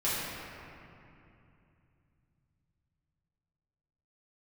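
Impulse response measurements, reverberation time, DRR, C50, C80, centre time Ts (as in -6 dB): 2.7 s, -11.0 dB, -3.0 dB, -1.0 dB, 167 ms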